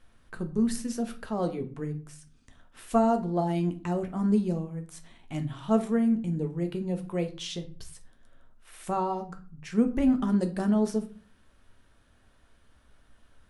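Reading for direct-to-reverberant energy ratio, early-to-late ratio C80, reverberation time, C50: 6.0 dB, 18.5 dB, 0.40 s, 14.0 dB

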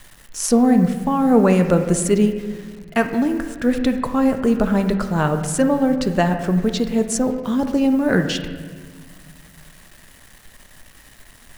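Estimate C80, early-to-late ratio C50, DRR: 9.5 dB, 8.0 dB, 6.0 dB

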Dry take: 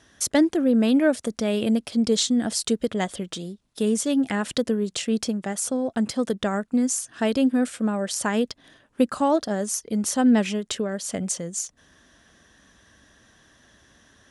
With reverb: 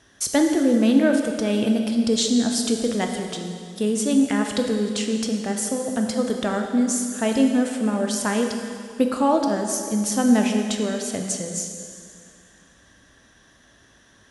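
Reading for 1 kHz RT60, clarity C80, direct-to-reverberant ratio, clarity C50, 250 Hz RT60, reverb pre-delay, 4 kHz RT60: 2.3 s, 5.5 dB, 3.0 dB, 4.5 dB, 2.4 s, 6 ms, 2.1 s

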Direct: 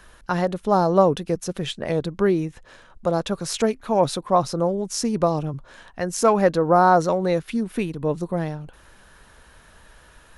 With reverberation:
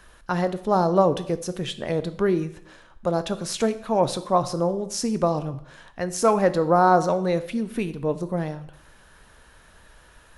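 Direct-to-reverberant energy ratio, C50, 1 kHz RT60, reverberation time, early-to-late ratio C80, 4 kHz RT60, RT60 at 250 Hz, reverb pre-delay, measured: 11.5 dB, 14.5 dB, 0.65 s, 0.65 s, 17.5 dB, 0.60 s, 0.70 s, 7 ms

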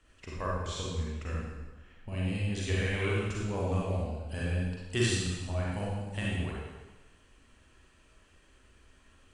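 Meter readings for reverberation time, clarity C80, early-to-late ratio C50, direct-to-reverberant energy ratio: 1.2 s, 1.0 dB, −2.5 dB, −5.5 dB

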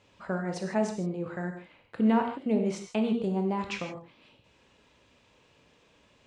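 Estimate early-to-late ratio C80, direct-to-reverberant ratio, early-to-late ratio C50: 8.5 dB, 3.5 dB, 6.5 dB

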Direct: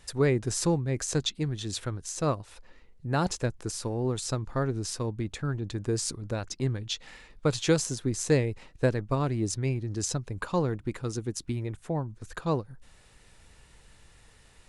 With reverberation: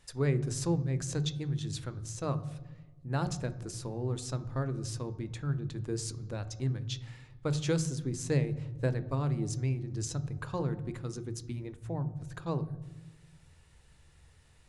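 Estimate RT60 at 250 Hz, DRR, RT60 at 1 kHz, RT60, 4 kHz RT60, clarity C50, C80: 1.7 s, 11.5 dB, 1.1 s, 1.2 s, 0.80 s, 15.0 dB, 17.5 dB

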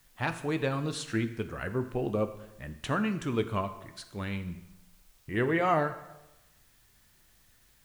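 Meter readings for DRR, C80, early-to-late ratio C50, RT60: 9.0 dB, 14.0 dB, 12.5 dB, 1.0 s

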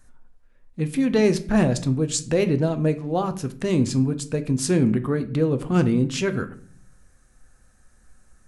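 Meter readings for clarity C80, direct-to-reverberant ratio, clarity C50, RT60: 19.0 dB, 9.0 dB, 15.0 dB, 0.50 s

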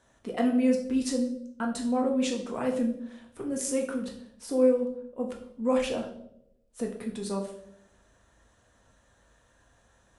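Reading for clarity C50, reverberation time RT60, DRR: 8.0 dB, 0.75 s, 0.5 dB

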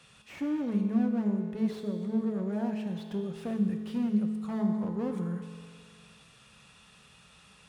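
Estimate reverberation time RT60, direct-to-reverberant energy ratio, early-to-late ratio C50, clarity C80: 2.1 s, 3.5 dB, 5.5 dB, 6.5 dB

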